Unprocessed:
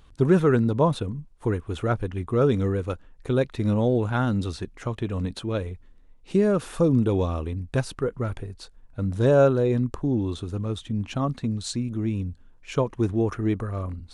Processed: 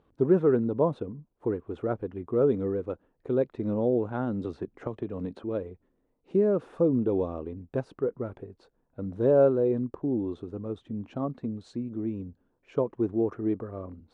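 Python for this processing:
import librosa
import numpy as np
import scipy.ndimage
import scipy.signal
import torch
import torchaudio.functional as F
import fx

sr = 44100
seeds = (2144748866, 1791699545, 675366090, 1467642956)

y = fx.bandpass_q(x, sr, hz=410.0, q=0.97)
y = fx.band_squash(y, sr, depth_pct=100, at=(4.44, 5.44))
y = y * librosa.db_to_amplitude(-1.0)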